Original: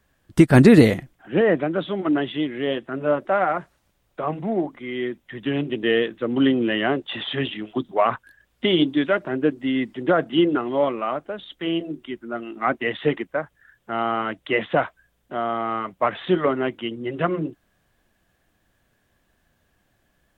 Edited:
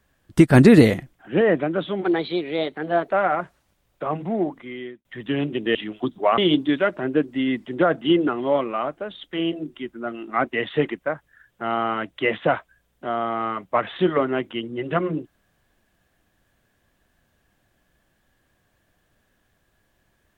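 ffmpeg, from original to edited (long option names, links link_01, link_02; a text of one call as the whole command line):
ffmpeg -i in.wav -filter_complex "[0:a]asplit=6[link_01][link_02][link_03][link_04][link_05][link_06];[link_01]atrim=end=2.044[link_07];[link_02]atrim=start=2.04:end=3.28,asetpts=PTS-STARTPTS,asetrate=51156,aresample=44100,atrim=end_sample=47141,asetpts=PTS-STARTPTS[link_08];[link_03]atrim=start=3.276:end=5.22,asetpts=PTS-STARTPTS,afade=type=out:start_time=1.444:duration=0.5[link_09];[link_04]atrim=start=5.22:end=5.922,asetpts=PTS-STARTPTS,afade=type=in:duration=0.004:curve=hsin[link_10];[link_05]atrim=start=7.478:end=8.112[link_11];[link_06]atrim=start=8.658[link_12];[link_07][link_08]acrossfade=duration=0.004:curve1=hsin:curve2=hsin[link_13];[link_09][link_10]concat=n=2:v=0:a=1[link_14];[link_13][link_14]acrossfade=duration=0.004:curve1=hsin:curve2=hsin[link_15];[link_15][link_11]acrossfade=duration=0.004:curve1=hsin:curve2=hsin[link_16];[link_16][link_12]acrossfade=duration=0.004:curve1=hsin:curve2=hsin" out.wav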